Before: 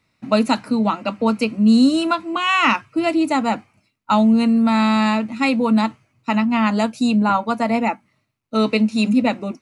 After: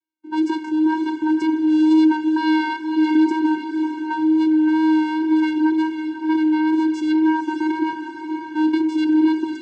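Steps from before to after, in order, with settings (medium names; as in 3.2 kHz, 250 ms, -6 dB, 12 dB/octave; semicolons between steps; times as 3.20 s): high-pass 170 Hz 24 dB/octave; gate -41 dBFS, range -22 dB; bass shelf 320 Hz -5.5 dB; in parallel at +2.5 dB: level held to a coarse grid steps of 24 dB; on the sum: transient shaper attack -5 dB, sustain +10 dB; compression, threshold -14 dBFS, peak gain reduction 6 dB; vocoder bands 8, square 313 Hz; wow and flutter 18 cents; echo that smears into a reverb 544 ms, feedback 48%, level -7 dB; on a send at -15 dB: reverberation RT60 0.70 s, pre-delay 3 ms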